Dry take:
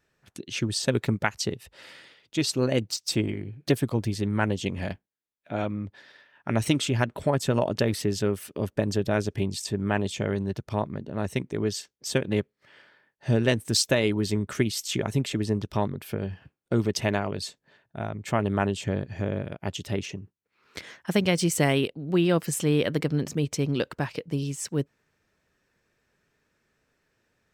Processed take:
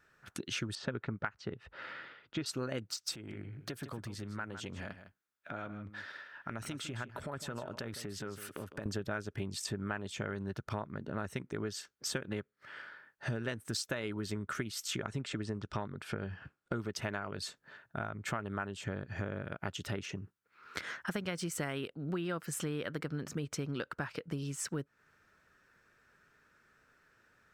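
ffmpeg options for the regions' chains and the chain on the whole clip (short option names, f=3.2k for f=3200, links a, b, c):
-filter_complex "[0:a]asettb=1/sr,asplit=3[a][b][c];[a]atrim=end=0.754[d];[b]atrim=start=0.75:end=2.46,asetpts=PTS-STARTPTS,afade=t=in:d=0.004:c=qsin,afade=t=out:st=1.706:d=0.004:c=qsin,lowpass=4.5k,aemphasis=mode=reproduction:type=75kf[e];[c]atrim=start=2.456[f];[d][e]acrossfade=d=0.004:c1=hsin:c2=qsin[g];[g][f]acrossfade=d=0.004:c1=qsin:c2=hsin,asettb=1/sr,asplit=3[h][i][j];[h]atrim=end=3.154[k];[i]atrim=start=3.15:end=8.86,asetpts=PTS-STARTPTS,afade=t=in:d=0.004:c=qsin,afade=t=out:st=5.706:d=0.004:c=qsin,highpass=46,acompressor=threshold=-44dB:ratio=3:attack=3.2:release=140:knee=1:detection=peak,aecho=1:1:156:0.251,atrim=end_sample=251811[l];[j]atrim=start=8.856[m];[k][l]acrossfade=d=0.004:c1=hsin:c2=qsin[n];[n][m]acrossfade=d=0.004:c1=qsin:c2=hsin,asettb=1/sr,asplit=3[o][p][q];[o]atrim=end=15.074[r];[p]atrim=start=15.07:end=16.75,asetpts=PTS-STARTPTS,afade=t=in:d=0.004:c=qsin,afade=t=out:st=1.676:d=0.004:c=qsin,lowpass=f=8.8k:w=0.5412,lowpass=f=8.8k:w=1.3066,bandreject=f=6.3k:w=28[s];[q]atrim=start=16.746[t];[r][s]acrossfade=d=0.004:c1=hsin:c2=qsin[u];[u][t]acrossfade=d=0.004:c1=qsin:c2=hsin,equalizer=f=1.4k:t=o:w=0.66:g=12.5,acompressor=threshold=-35dB:ratio=6"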